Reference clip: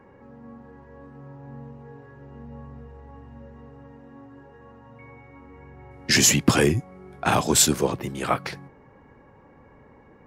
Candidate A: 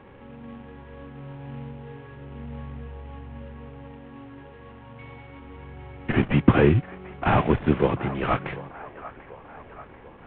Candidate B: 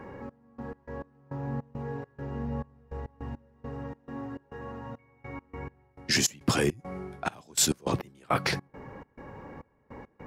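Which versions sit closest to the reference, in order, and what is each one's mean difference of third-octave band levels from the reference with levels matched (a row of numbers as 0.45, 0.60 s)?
A, B; 6.0, 9.0 dB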